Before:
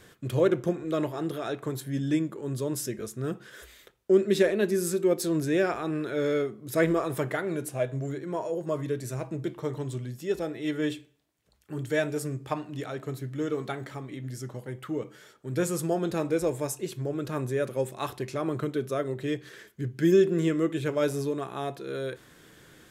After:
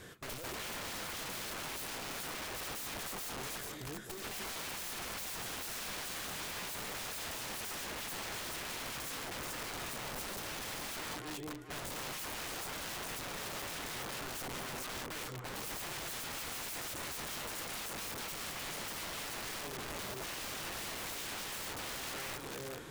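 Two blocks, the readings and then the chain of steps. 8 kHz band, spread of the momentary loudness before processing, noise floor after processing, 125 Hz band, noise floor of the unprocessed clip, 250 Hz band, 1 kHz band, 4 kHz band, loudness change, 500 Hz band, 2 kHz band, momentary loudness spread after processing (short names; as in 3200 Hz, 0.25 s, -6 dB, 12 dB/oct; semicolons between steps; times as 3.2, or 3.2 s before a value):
+0.5 dB, 12 LU, -44 dBFS, -18.0 dB, -58 dBFS, -20.0 dB, -5.5 dB, +3.0 dB, -10.5 dB, -20.0 dB, -3.5 dB, 2 LU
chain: tube stage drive 33 dB, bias 0.4; echo with dull and thin repeats by turns 0.214 s, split 800 Hz, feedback 64%, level -3 dB; wrapped overs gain 40.5 dB; gain +3.5 dB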